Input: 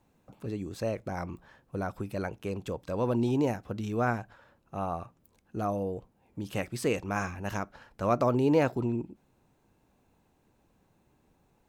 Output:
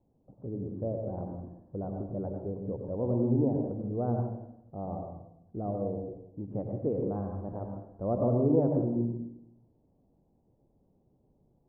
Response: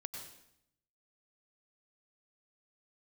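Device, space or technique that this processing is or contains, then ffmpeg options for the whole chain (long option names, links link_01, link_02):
next room: -filter_complex "[0:a]lowpass=frequency=690:width=0.5412,lowpass=frequency=690:width=1.3066[link_01];[1:a]atrim=start_sample=2205[link_02];[link_01][link_02]afir=irnorm=-1:irlink=0,volume=2dB"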